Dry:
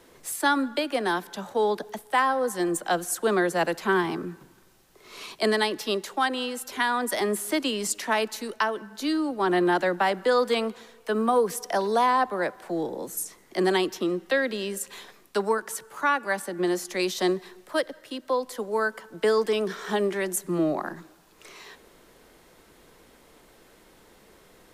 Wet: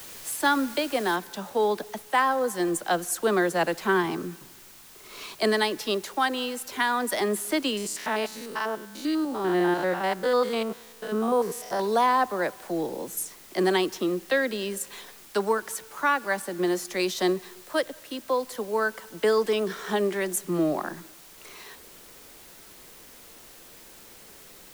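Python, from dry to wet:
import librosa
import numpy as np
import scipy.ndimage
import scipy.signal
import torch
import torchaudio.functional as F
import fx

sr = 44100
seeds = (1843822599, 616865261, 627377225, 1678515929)

y = fx.noise_floor_step(x, sr, seeds[0], at_s=1.16, before_db=-43, after_db=-50, tilt_db=0.0)
y = fx.spec_steps(y, sr, hold_ms=100, at=(7.77, 11.8))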